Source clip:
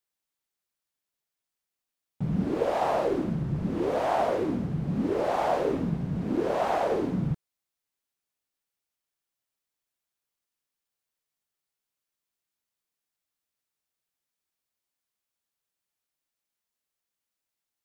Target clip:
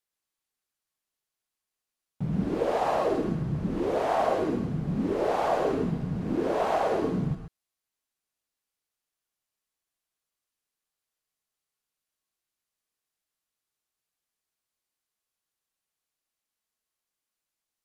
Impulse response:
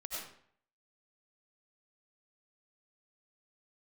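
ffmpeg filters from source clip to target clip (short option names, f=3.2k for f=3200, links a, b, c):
-filter_complex "[1:a]atrim=start_sample=2205,atrim=end_sample=3528,asetrate=26019,aresample=44100[a];[0:a][a]afir=irnorm=-1:irlink=0,volume=2.5dB"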